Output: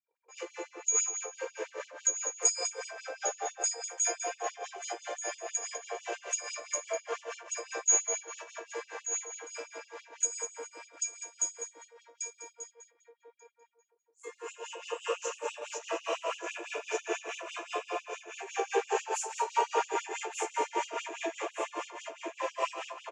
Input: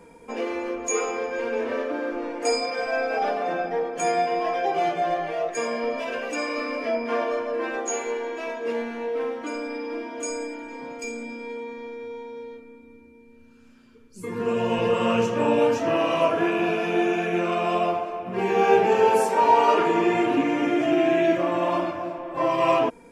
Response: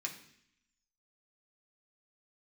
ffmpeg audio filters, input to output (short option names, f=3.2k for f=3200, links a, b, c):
-filter_complex "[0:a]asplit=2[a][b];[b]aecho=0:1:1186|2372|3558|4744:0.531|0.154|0.0446|0.0129[c];[a][c]amix=inputs=2:normalize=0,anlmdn=0.1,lowpass=f=6.9k:t=q:w=9.9,tremolo=f=4.9:d=0.77,bandreject=f=690:w=21,asplit=2[d][e];[e]adelay=200,lowpass=f=4.4k:p=1,volume=-6dB,asplit=2[f][g];[g]adelay=200,lowpass=f=4.4k:p=1,volume=0.31,asplit=2[h][i];[i]adelay=200,lowpass=f=4.4k:p=1,volume=0.31,asplit=2[j][k];[k]adelay=200,lowpass=f=4.4k:p=1,volume=0.31[l];[f][h][j][l]amix=inputs=4:normalize=0[m];[d][m]amix=inputs=2:normalize=0,afftfilt=real='re*gte(b*sr/1024,300*pow(2800/300,0.5+0.5*sin(2*PI*6*pts/sr)))':imag='im*gte(b*sr/1024,300*pow(2800/300,0.5+0.5*sin(2*PI*6*pts/sr)))':win_size=1024:overlap=0.75,volume=-7.5dB"